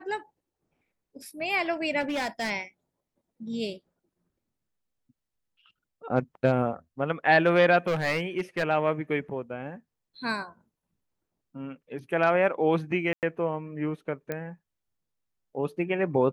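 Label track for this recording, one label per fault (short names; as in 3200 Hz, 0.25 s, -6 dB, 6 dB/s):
2.000000	2.510000	clipped -26 dBFS
7.870000	8.640000	clipped -22 dBFS
13.130000	13.230000	gap 98 ms
14.320000	14.320000	pop -18 dBFS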